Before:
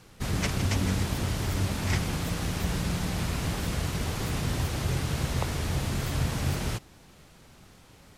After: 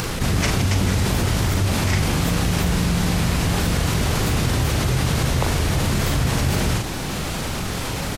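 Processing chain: upward compressor, threshold -42 dBFS; doubling 40 ms -7 dB; level flattener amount 70%; trim +4.5 dB

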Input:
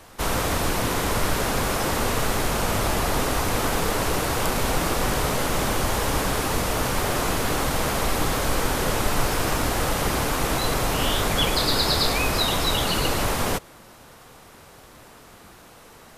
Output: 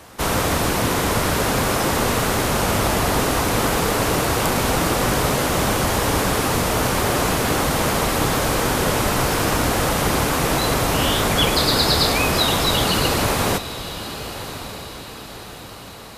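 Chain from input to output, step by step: high-pass 120 Hz 6 dB/octave; bass shelf 210 Hz +5.5 dB; echo that smears into a reverb 1152 ms, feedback 48%, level -12.5 dB; trim +4 dB

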